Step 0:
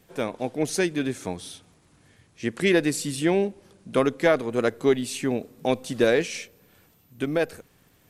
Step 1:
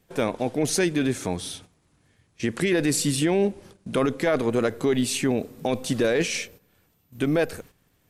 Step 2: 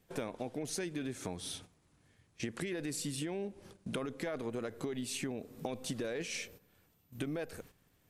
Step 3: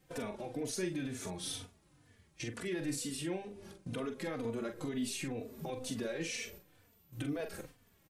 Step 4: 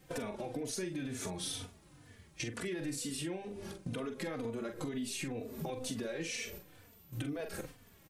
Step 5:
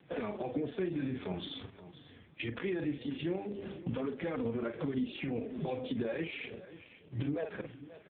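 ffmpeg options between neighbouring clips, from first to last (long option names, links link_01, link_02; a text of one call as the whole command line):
ffmpeg -i in.wav -af "agate=range=-12dB:threshold=-51dB:ratio=16:detection=peak,lowshelf=frequency=79:gain=5.5,alimiter=limit=-19dB:level=0:latency=1:release=23,volume=5.5dB" out.wav
ffmpeg -i in.wav -af "acompressor=threshold=-30dB:ratio=10,volume=-5dB" out.wav
ffmpeg -i in.wav -filter_complex "[0:a]alimiter=level_in=8.5dB:limit=-24dB:level=0:latency=1:release=80,volume=-8.5dB,asplit=2[link_01][link_02];[link_02]adelay=43,volume=-7dB[link_03];[link_01][link_03]amix=inputs=2:normalize=0,asplit=2[link_04][link_05];[link_05]adelay=3.3,afreqshift=-2.1[link_06];[link_04][link_06]amix=inputs=2:normalize=1,volume=5dB" out.wav
ffmpeg -i in.wav -af "acompressor=threshold=-44dB:ratio=4,volume=7dB" out.wav
ffmpeg -i in.wav -filter_complex "[0:a]acrossover=split=120[link_01][link_02];[link_01]acrusher=samples=18:mix=1:aa=0.000001:lfo=1:lforange=10.8:lforate=0.75[link_03];[link_03][link_02]amix=inputs=2:normalize=0,aecho=1:1:532:0.168,volume=5dB" -ar 8000 -c:a libopencore_amrnb -b:a 4750 out.amr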